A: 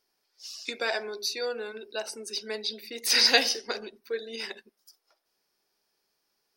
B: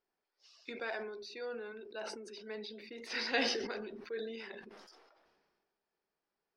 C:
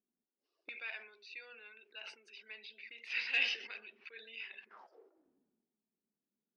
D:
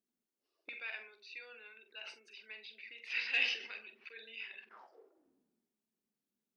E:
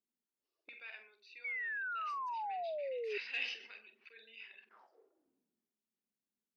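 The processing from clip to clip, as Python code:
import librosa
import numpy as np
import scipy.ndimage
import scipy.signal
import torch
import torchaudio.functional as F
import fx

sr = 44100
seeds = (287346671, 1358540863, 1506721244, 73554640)

y1 = scipy.signal.sosfilt(scipy.signal.bessel(2, 1800.0, 'lowpass', norm='mag', fs=sr, output='sos'), x)
y1 = fx.dynamic_eq(y1, sr, hz=640.0, q=0.88, threshold_db=-43.0, ratio=4.0, max_db=-4)
y1 = fx.sustainer(y1, sr, db_per_s=34.0)
y1 = F.gain(torch.from_numpy(y1), -6.5).numpy()
y2 = fx.low_shelf(y1, sr, hz=150.0, db=8.0)
y2 = np.clip(10.0 ** (23.5 / 20.0) * y2, -1.0, 1.0) / 10.0 ** (23.5 / 20.0)
y2 = fx.auto_wah(y2, sr, base_hz=220.0, top_hz=2600.0, q=5.5, full_db=-44.5, direction='up')
y2 = F.gain(torch.from_numpy(y2), 9.0).numpy()
y3 = fx.doubler(y2, sr, ms=45.0, db=-10.5)
y4 = fx.spec_paint(y3, sr, seeds[0], shape='fall', start_s=1.44, length_s=1.74, low_hz=400.0, high_hz=2300.0, level_db=-33.0)
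y4 = F.gain(torch.from_numpy(y4), -6.5).numpy()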